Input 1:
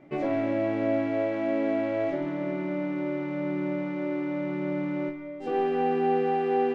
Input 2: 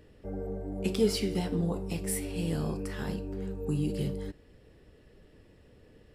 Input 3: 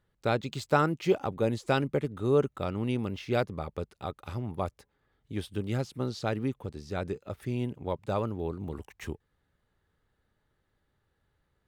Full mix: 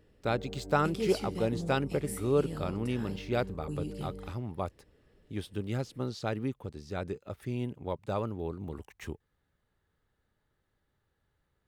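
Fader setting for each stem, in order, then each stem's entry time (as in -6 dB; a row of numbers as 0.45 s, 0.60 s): mute, -7.5 dB, -2.5 dB; mute, 0.00 s, 0.00 s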